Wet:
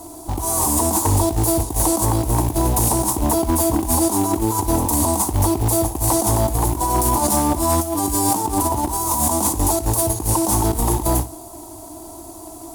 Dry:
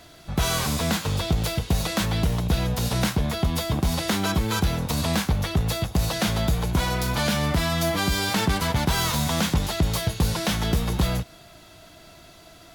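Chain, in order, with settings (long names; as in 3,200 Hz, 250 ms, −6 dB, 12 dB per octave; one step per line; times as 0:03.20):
drawn EQ curve 110 Hz 0 dB, 160 Hz −16 dB, 320 Hz +12 dB, 490 Hz −5 dB, 950 Hz +10 dB, 1,600 Hz −23 dB, 2,400 Hz −29 dB, 9,100 Hz +13 dB, 14,000 Hz +7 dB
compressor whose output falls as the input rises −24 dBFS, ratio −0.5
asymmetric clip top −18.5 dBFS, bottom −16 dBFS
floating-point word with a short mantissa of 2 bits
on a send: flutter between parallel walls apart 10.6 metres, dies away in 0.26 s
on the sum: level +6.5 dB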